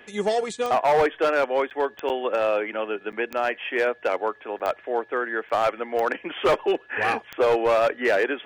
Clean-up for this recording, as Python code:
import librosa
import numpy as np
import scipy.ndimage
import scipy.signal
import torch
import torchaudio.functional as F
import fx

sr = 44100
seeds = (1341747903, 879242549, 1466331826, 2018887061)

y = fx.fix_declip(x, sr, threshold_db=-15.0)
y = fx.fix_declick_ar(y, sr, threshold=10.0)
y = fx.notch(y, sr, hz=1700.0, q=30.0)
y = fx.fix_interpolate(y, sr, at_s=(1.7, 2.09, 3.12, 4.59, 5.49), length_ms=8.1)